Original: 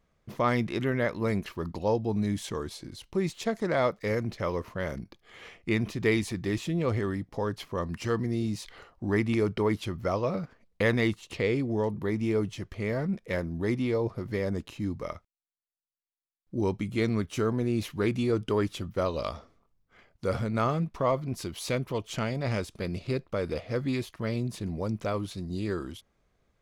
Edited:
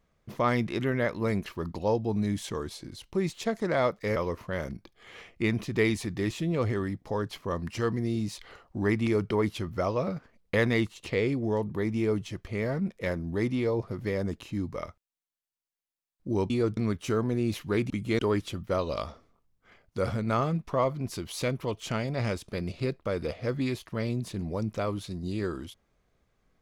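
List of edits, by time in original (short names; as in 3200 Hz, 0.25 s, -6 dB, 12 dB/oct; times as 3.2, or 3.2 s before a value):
4.16–4.43 cut
16.77–17.06 swap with 18.19–18.46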